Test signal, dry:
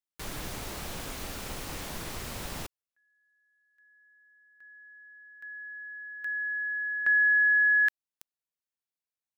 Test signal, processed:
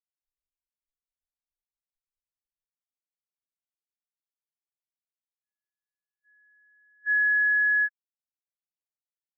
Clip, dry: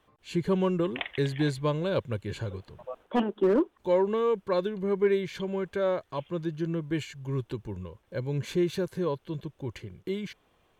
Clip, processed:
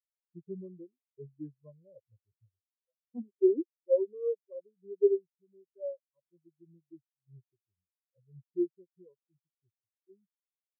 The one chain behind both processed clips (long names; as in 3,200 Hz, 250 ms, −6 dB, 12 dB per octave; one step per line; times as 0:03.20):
every bin expanded away from the loudest bin 4 to 1